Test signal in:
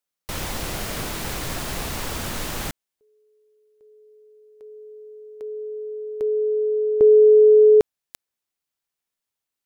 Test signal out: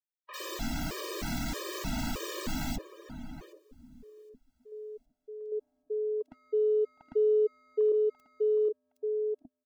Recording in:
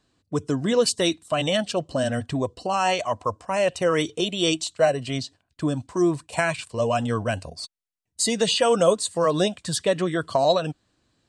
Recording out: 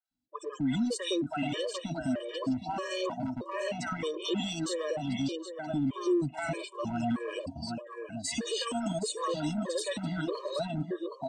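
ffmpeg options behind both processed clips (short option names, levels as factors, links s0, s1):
-filter_complex "[0:a]equalizer=f=100:t=o:w=0.33:g=-9,equalizer=f=250:t=o:w=0.33:g=10,equalizer=f=10000:t=o:w=0.33:g=-5,asplit=2[s0][s1];[s1]aecho=0:1:766|1532|2298|3064:0.316|0.108|0.0366|0.0124[s2];[s0][s2]amix=inputs=2:normalize=0,afftdn=nr=19:nf=-41,acrossover=split=730|2300[s3][s4][s5];[s5]adelay=50[s6];[s3]adelay=110[s7];[s7][s4][s6]amix=inputs=3:normalize=0,acompressor=threshold=0.0708:ratio=6:attack=0.25:release=34:knee=1:detection=peak,adynamicequalizer=threshold=0.00891:dfrequency=370:dqfactor=6.7:tfrequency=370:tqfactor=6.7:attack=5:release=100:ratio=0.4:range=2:mode=boostabove:tftype=bell,afftfilt=real='re*gt(sin(2*PI*1.6*pts/sr)*(1-2*mod(floor(b*sr/1024/320),2)),0)':imag='im*gt(sin(2*PI*1.6*pts/sr)*(1-2*mod(floor(b*sr/1024/320),2)),0)':win_size=1024:overlap=0.75,volume=0.841"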